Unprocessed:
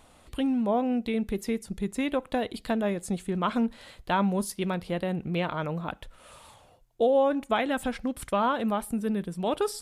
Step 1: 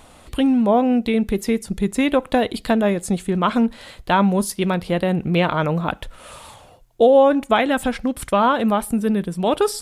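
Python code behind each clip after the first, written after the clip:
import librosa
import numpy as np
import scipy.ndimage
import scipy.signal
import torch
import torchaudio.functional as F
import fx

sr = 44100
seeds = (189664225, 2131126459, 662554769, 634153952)

y = fx.rider(x, sr, range_db=3, speed_s=2.0)
y = y * librosa.db_to_amplitude(8.5)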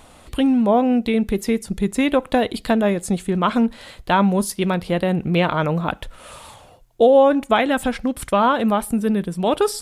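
y = x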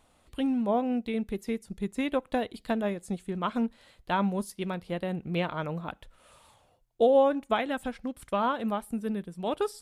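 y = fx.upward_expand(x, sr, threshold_db=-29.0, expansion=1.5)
y = y * librosa.db_to_amplitude(-8.0)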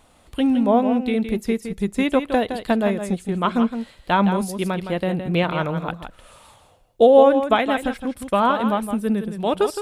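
y = x + 10.0 ** (-9.0 / 20.0) * np.pad(x, (int(165 * sr / 1000.0), 0))[:len(x)]
y = y * librosa.db_to_amplitude(9.0)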